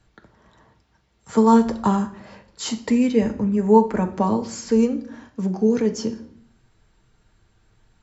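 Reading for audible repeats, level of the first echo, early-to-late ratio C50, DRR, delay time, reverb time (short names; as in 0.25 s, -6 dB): none, none, 13.0 dB, 4.0 dB, none, 0.60 s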